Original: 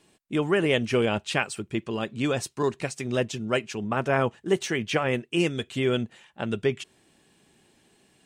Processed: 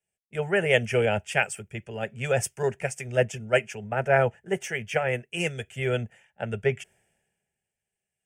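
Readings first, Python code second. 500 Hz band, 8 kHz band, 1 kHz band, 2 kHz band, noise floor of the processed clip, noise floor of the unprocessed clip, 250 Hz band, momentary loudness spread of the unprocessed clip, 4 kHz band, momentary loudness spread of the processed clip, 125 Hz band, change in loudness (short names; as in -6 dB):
+1.0 dB, +1.0 dB, 0.0 dB, +2.5 dB, under -85 dBFS, -64 dBFS, -8.0 dB, 8 LU, -4.0 dB, 12 LU, +0.5 dB, 0.0 dB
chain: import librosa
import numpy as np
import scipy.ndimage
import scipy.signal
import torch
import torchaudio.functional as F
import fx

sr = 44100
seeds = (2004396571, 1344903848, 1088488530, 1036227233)

y = fx.rider(x, sr, range_db=10, speed_s=2.0)
y = fx.fixed_phaser(y, sr, hz=1100.0, stages=6)
y = fx.band_widen(y, sr, depth_pct=70)
y = F.gain(torch.from_numpy(y), 2.5).numpy()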